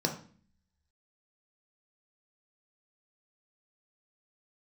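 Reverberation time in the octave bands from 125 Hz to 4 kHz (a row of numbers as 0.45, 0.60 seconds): 0.75, 0.80, 0.45, 0.40, 0.45, 0.40 seconds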